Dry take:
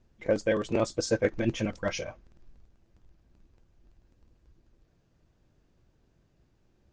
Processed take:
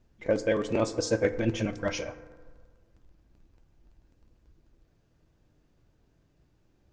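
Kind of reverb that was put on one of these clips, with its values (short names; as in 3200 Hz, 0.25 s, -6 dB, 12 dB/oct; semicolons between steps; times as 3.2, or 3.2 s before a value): FDN reverb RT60 1.6 s, low-frequency decay 0.8×, high-frequency decay 0.35×, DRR 10.5 dB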